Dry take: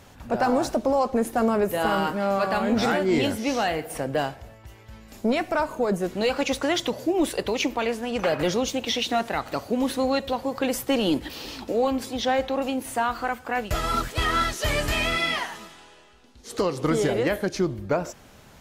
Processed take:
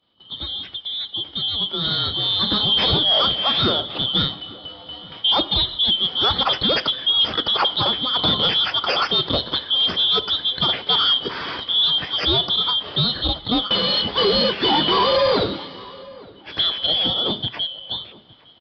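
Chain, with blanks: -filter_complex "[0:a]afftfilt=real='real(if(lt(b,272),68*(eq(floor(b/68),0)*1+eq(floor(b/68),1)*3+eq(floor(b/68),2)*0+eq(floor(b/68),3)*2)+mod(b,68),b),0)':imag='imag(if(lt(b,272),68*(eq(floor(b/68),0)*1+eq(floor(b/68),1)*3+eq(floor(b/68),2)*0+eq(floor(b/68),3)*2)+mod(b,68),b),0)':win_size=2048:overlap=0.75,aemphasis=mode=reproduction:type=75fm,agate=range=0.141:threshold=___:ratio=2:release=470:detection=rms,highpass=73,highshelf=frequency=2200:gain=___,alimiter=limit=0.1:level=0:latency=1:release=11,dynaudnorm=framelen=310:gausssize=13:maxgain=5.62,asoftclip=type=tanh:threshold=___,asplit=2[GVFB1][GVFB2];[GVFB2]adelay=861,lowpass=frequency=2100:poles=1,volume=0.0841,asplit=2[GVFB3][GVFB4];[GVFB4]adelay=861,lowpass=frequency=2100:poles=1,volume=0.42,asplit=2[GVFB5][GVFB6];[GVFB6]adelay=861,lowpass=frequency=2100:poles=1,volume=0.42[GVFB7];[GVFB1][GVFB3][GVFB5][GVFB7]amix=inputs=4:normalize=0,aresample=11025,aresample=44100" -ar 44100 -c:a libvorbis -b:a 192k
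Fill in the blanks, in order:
0.00631, -5, 0.251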